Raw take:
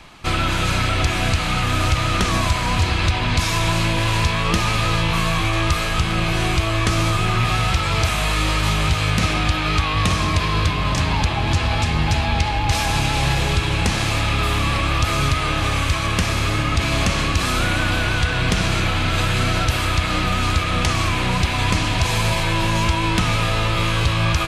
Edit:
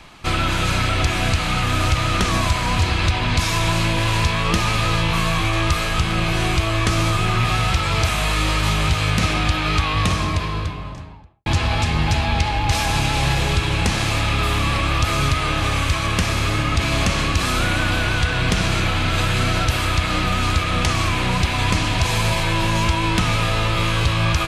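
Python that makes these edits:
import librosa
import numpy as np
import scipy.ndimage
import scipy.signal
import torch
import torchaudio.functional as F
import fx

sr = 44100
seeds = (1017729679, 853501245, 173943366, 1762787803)

y = fx.studio_fade_out(x, sr, start_s=9.9, length_s=1.56)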